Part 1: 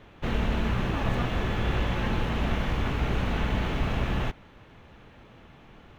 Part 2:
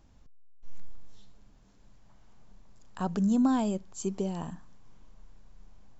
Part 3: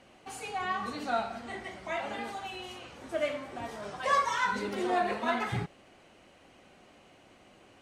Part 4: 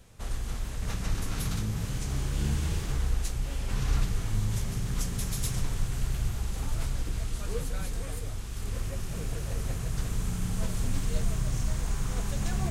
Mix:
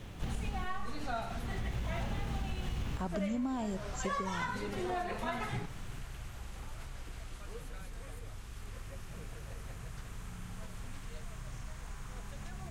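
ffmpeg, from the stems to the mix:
ffmpeg -i stem1.wav -i stem2.wav -i stem3.wav -i stem4.wav -filter_complex "[0:a]acompressor=threshold=-34dB:ratio=6,bass=frequency=250:gain=10,treble=frequency=4000:gain=15,volume=-2.5dB[link_01];[1:a]volume=-3dB,asplit=2[link_02][link_03];[2:a]volume=-4dB[link_04];[3:a]acrossover=split=730|3000[link_05][link_06][link_07];[link_05]acompressor=threshold=-38dB:ratio=4[link_08];[link_06]acompressor=threshold=-48dB:ratio=4[link_09];[link_07]acompressor=threshold=-56dB:ratio=4[link_10];[link_08][link_09][link_10]amix=inputs=3:normalize=0,volume=-4.5dB[link_11];[link_03]apad=whole_len=263947[link_12];[link_01][link_12]sidechaincompress=threshold=-51dB:ratio=8:attack=16:release=743[link_13];[link_13][link_02][link_04][link_11]amix=inputs=4:normalize=0,acompressor=threshold=-32dB:ratio=5" out.wav

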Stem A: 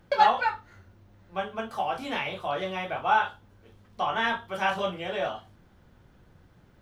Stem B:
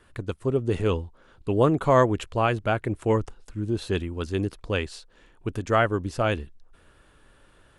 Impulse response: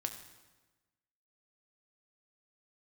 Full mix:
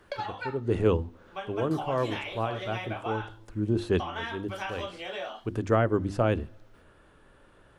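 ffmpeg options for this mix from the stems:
-filter_complex "[0:a]highpass=frequency=210:width=0.5412,highpass=frequency=210:width=1.3066,equalizer=frequency=5700:width=0.35:gain=5,acompressor=threshold=-27dB:ratio=12,volume=-4.5dB,asplit=2[link_01][link_02];[1:a]highshelf=frequency=2100:gain=-10,bandreject=frequency=50:width_type=h:width=6,bandreject=frequency=100:width_type=h:width=6,bandreject=frequency=150:width_type=h:width=6,bandreject=frequency=200:width_type=h:width=6,bandreject=frequency=250:width_type=h:width=6,bandreject=frequency=300:width_type=h:width=6,bandreject=frequency=350:width_type=h:width=6,volume=2dB,asplit=2[link_03][link_04];[link_04]volume=-20dB[link_05];[link_02]apad=whole_len=343127[link_06];[link_03][link_06]sidechaincompress=threshold=-49dB:ratio=8:attack=46:release=254[link_07];[2:a]atrim=start_sample=2205[link_08];[link_05][link_08]afir=irnorm=-1:irlink=0[link_09];[link_01][link_07][link_09]amix=inputs=3:normalize=0,lowshelf=frequency=63:gain=-7,acrossover=split=470[link_10][link_11];[link_11]acompressor=threshold=-26dB:ratio=3[link_12];[link_10][link_12]amix=inputs=2:normalize=0"

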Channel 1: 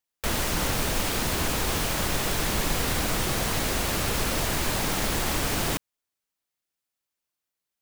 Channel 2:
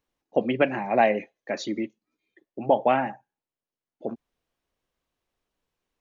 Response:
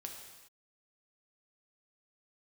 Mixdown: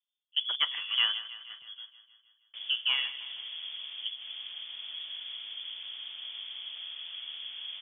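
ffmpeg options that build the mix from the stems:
-filter_complex "[0:a]bandpass=frequency=320:width_type=q:width=1.7:csg=0,flanger=delay=2.6:depth=7.7:regen=85:speed=1.6:shape=sinusoidal,adelay=2300,volume=-2dB,asplit=2[link_01][link_02];[link_02]volume=-8dB[link_03];[1:a]adynamicsmooth=sensitivity=4:basefreq=840,volume=4.5dB,afade=type=out:start_time=1.03:duration=0.38:silence=0.316228,afade=type=in:start_time=2.52:duration=0.53:silence=0.251189,asplit=3[link_04][link_05][link_06];[link_05]volume=-14.5dB[link_07];[link_06]apad=whole_len=446280[link_08];[link_01][link_08]sidechaincompress=threshold=-43dB:ratio=8:attack=5.7:release=170[link_09];[link_03][link_07]amix=inputs=2:normalize=0,aecho=0:1:157|314|471|628|785|942|1099|1256|1413|1570:1|0.6|0.36|0.216|0.13|0.0778|0.0467|0.028|0.0168|0.0101[link_10];[link_09][link_04][link_10]amix=inputs=3:normalize=0,lowpass=frequency=3100:width_type=q:width=0.5098,lowpass=frequency=3100:width_type=q:width=0.6013,lowpass=frequency=3100:width_type=q:width=0.9,lowpass=frequency=3100:width_type=q:width=2.563,afreqshift=-3600,highpass=49"

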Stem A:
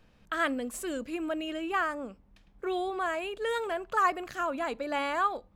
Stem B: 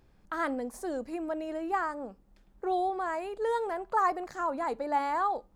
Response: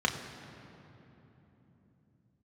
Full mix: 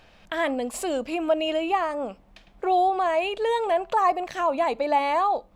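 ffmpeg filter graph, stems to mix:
-filter_complex "[0:a]equalizer=frequency=3100:width=0.3:gain=15,volume=-1.5dB[link_01];[1:a]equalizer=frequency=570:width=1.3:gain=-4.5,volume=2.5dB,asplit=2[link_02][link_03];[link_03]apad=whole_len=245108[link_04];[link_01][link_04]sidechaincompress=threshold=-35dB:ratio=8:attack=5.1:release=390[link_05];[link_05][link_02]amix=inputs=2:normalize=0,equalizer=frequency=670:width=2:gain=11"

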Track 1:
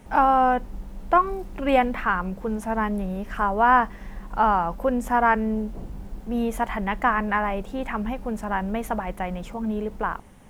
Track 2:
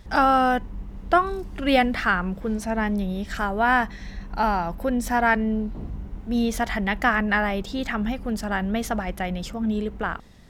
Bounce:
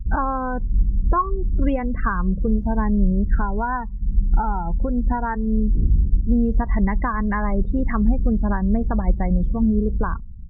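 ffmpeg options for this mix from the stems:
ffmpeg -i stem1.wav -i stem2.wav -filter_complex "[0:a]volume=-15dB,asplit=2[link_01][link_02];[1:a]aemphasis=mode=reproduction:type=riaa,adelay=1.5,volume=0.5dB[link_03];[link_02]apad=whole_len=462961[link_04];[link_03][link_04]sidechaincompress=threshold=-39dB:ratio=10:attack=16:release=405[link_05];[link_01][link_05]amix=inputs=2:normalize=0,afftdn=noise_reduction=34:noise_floor=-28,equalizer=frequency=1100:width_type=o:width=0.4:gain=9" out.wav

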